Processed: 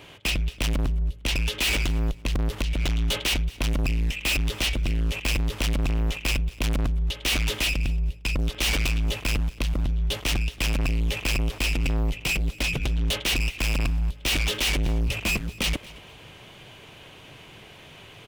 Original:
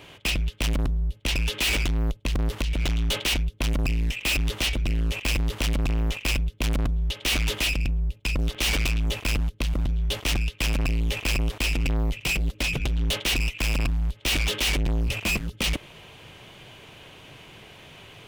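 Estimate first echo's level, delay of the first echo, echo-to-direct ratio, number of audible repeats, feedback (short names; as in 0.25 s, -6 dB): -21.5 dB, 0.227 s, -21.0 dB, 2, 25%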